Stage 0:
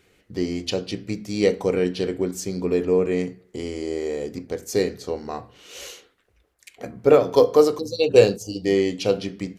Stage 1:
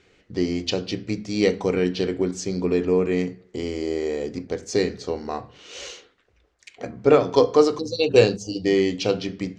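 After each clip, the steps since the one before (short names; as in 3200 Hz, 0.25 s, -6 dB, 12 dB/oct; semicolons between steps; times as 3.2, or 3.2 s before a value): LPF 6800 Hz 24 dB/oct; notches 50/100/150/200 Hz; dynamic EQ 540 Hz, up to -5 dB, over -28 dBFS, Q 2; gain +2 dB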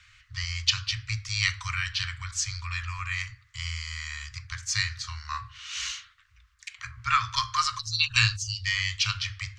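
Chebyshev band-stop 110–1100 Hz, order 5; gain +5.5 dB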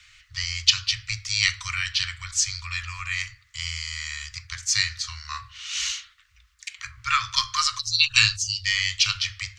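passive tone stack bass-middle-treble 10-0-10; notch 1600 Hz, Q 25; gain +7.5 dB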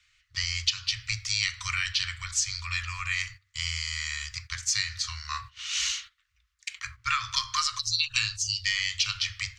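de-hum 95.32 Hz, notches 10; gate -42 dBFS, range -13 dB; compressor 6:1, threshold -23 dBFS, peak gain reduction 11.5 dB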